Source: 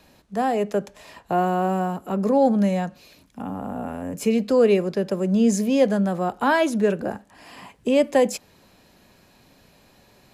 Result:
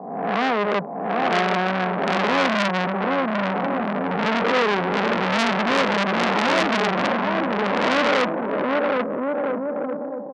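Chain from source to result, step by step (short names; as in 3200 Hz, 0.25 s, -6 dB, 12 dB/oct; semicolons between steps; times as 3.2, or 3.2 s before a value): spectral swells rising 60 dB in 1.01 s; Chebyshev band-pass 160–1100 Hz, order 4; limiter -12.5 dBFS, peak gain reduction 5.5 dB; on a send: bouncing-ball echo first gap 0.77 s, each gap 0.7×, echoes 5; on the sum: core saturation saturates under 2900 Hz; gain +5.5 dB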